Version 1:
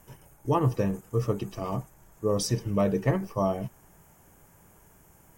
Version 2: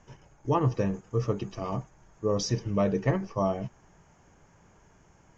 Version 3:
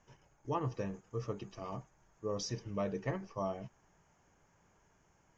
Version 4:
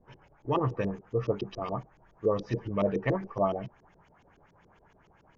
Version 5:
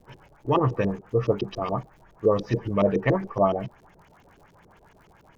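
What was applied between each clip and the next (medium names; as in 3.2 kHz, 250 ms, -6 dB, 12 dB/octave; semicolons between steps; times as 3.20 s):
Chebyshev low-pass 6.8 kHz, order 6
bass shelf 450 Hz -4.5 dB; trim -8 dB
LFO low-pass saw up 7.1 Hz 310–4500 Hz; trim +7 dB
crackle 99 per s -57 dBFS; trim +6 dB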